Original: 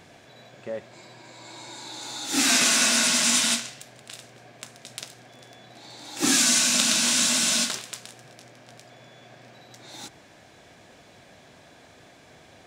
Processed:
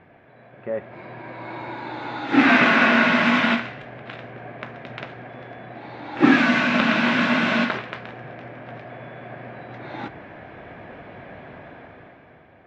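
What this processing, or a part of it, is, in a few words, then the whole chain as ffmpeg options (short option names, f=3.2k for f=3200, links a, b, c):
action camera in a waterproof case: -af "lowpass=f=2.2k:w=0.5412,lowpass=f=2.2k:w=1.3066,dynaudnorm=f=140:g=13:m=12.5dB" -ar 24000 -c:a aac -b:a 48k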